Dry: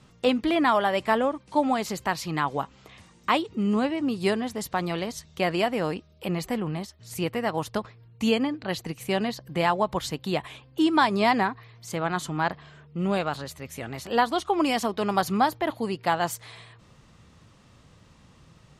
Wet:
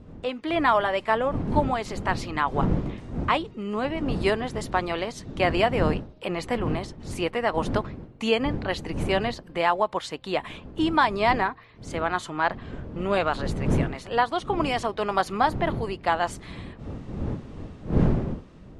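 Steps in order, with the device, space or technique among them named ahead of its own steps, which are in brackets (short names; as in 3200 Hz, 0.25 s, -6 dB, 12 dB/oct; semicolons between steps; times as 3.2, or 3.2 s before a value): tone controls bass -14 dB, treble -8 dB; notch 790 Hz, Q 23; smartphone video outdoors (wind noise -34 dBFS; AGC gain up to 12.5 dB; gain -6.5 dB; AAC 96 kbps 24000 Hz)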